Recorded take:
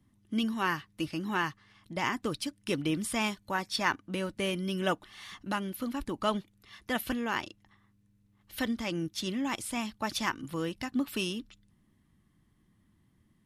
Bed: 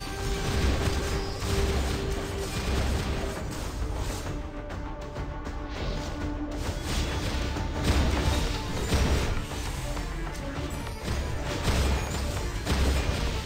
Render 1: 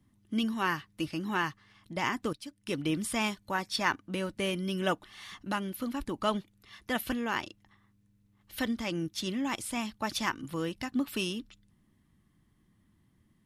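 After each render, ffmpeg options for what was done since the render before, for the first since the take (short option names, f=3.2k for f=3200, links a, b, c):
-filter_complex "[0:a]asplit=2[a][b];[a]atrim=end=2.33,asetpts=PTS-STARTPTS,afade=t=out:st=2.326:d=0.004:c=hsin:silence=0.199526[c];[b]atrim=start=2.33,asetpts=PTS-STARTPTS,afade=t=in:d=0.57:silence=0.199526[d];[c][d]concat=n=2:v=0:a=1"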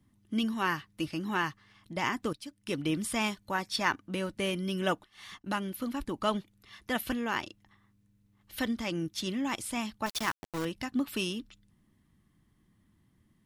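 -filter_complex "[0:a]asplit=3[a][b][c];[a]afade=t=out:st=5.02:d=0.02[d];[b]agate=range=-33dB:threshold=-46dB:ratio=3:release=100:detection=peak,afade=t=in:st=5.02:d=0.02,afade=t=out:st=6.19:d=0.02[e];[c]afade=t=in:st=6.19:d=0.02[f];[d][e][f]amix=inputs=3:normalize=0,asettb=1/sr,asplit=3[g][h][i];[g]atrim=end=10.064[j];[h]atrim=start=10.06:end=10.65,asetpts=PTS-STARTPTS,afade=t=in:d=0.004:c=qsin,afade=t=out:st=0.586:d=0.004:c=qsin,aeval=exprs='val(0)*gte(abs(val(0)),0.0224)':c=same[k];[i]atrim=start=10.646[l];[j][k]acrossfade=d=0.004:c1=hsin:c2=qsin[m];[m][l]acrossfade=d=0.004:c1=qsin:c2=hsin"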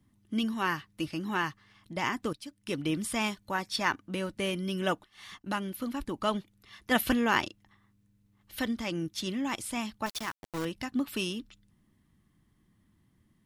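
-filter_complex "[0:a]asettb=1/sr,asplit=3[a][b][c];[a]atrim=end=6.914[d];[b]atrim=start=6.91:end=7.48,asetpts=PTS-STARTPTS,afade=t=in:d=0.004:c=qsin,afade=t=out:st=0.566:d=0.004:c=qsin,acontrast=54[e];[c]atrim=start=7.476[f];[d][e]acrossfade=d=0.004:c1=hsin:c2=qsin[g];[g][f]acrossfade=d=0.004:c1=qsin:c2=hsin,asplit=2[h][i];[h]atrim=end=10.43,asetpts=PTS-STARTPTS,afade=t=out:st=10.03:d=0.4:silence=0.281838[j];[i]atrim=start=10.43,asetpts=PTS-STARTPTS,afade=t=in:d=0.004:c=hsin:silence=0.281838[k];[j][k]concat=n=2:v=0:a=1"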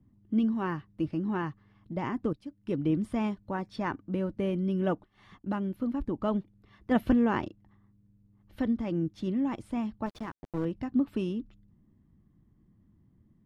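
-af "lowpass=f=1.1k:p=1,tiltshelf=f=760:g=5.5"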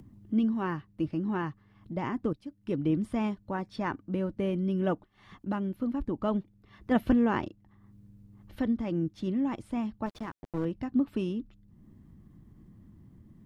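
-af "acompressor=mode=upward:threshold=-43dB:ratio=2.5"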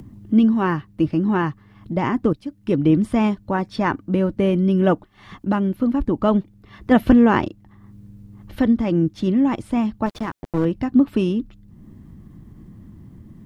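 -af "volume=11.5dB,alimiter=limit=-2dB:level=0:latency=1"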